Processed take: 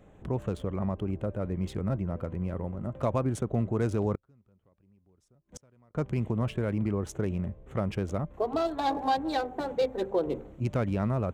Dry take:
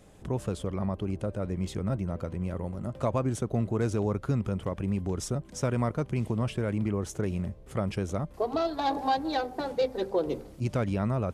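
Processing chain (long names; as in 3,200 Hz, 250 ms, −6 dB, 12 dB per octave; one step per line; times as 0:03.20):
adaptive Wiener filter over 9 samples
0:04.15–0:05.95: gate with flip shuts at −30 dBFS, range −34 dB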